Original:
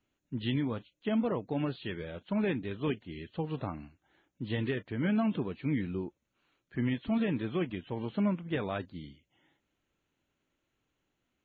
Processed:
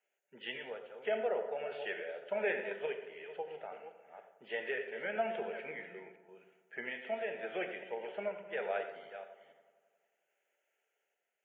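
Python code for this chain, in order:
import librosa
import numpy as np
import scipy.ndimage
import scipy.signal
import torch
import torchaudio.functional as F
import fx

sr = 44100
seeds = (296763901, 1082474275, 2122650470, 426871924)

y = fx.reverse_delay(x, sr, ms=280, wet_db=-11)
y = scipy.signal.sosfilt(scipy.signal.butter(4, 360.0, 'highpass', fs=sr, output='sos'), y)
y = fx.fixed_phaser(y, sr, hz=1100.0, stages=6)
y = fx.tremolo_random(y, sr, seeds[0], hz=3.5, depth_pct=55)
y = fx.echo_bbd(y, sr, ms=90, stages=1024, feedback_pct=71, wet_db=-13.5)
y = fx.rev_gated(y, sr, seeds[1], gate_ms=140, shape='flat', drr_db=7.5)
y = y * 10.0 ** (4.0 / 20.0)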